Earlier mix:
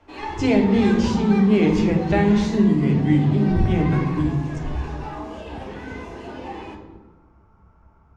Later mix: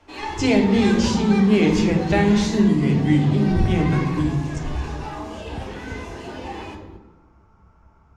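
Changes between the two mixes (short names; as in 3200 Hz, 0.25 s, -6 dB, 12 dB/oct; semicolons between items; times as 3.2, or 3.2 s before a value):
second sound +6.0 dB; master: add high shelf 3400 Hz +10 dB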